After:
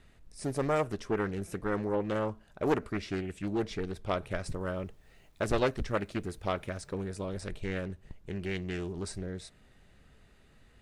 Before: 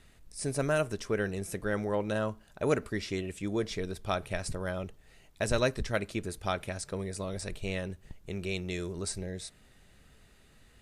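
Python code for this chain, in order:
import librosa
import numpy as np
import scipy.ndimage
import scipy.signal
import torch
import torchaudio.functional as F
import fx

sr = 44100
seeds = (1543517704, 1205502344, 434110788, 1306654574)

y = fx.high_shelf(x, sr, hz=3800.0, db=-8.0)
y = fx.quant_dither(y, sr, seeds[0], bits=12, dither='none', at=(4.44, 6.93))
y = fx.doppler_dist(y, sr, depth_ms=0.79)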